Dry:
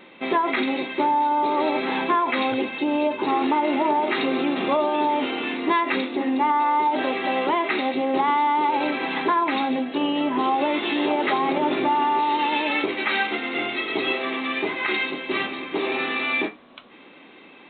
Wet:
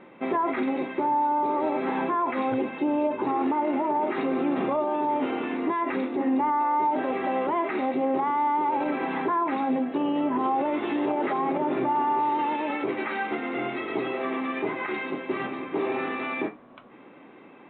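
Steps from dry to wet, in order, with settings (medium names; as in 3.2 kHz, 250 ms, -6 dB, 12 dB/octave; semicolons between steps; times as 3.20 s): peak limiter -17 dBFS, peak gain reduction 7.5 dB; low-pass 1.5 kHz 12 dB/octave; peaking EQ 130 Hz +6 dB 0.44 oct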